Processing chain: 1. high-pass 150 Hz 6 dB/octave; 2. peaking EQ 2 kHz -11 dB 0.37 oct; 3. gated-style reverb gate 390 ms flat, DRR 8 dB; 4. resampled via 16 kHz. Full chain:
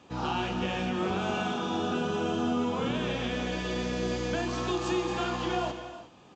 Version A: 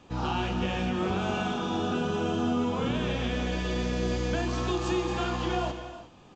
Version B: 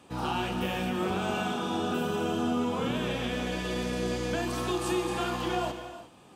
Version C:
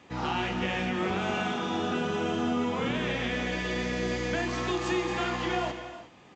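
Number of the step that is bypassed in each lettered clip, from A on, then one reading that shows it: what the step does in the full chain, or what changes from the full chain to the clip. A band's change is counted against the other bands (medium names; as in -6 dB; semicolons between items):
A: 1, 125 Hz band +4.0 dB; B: 4, 8 kHz band +2.5 dB; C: 2, 2 kHz band +4.0 dB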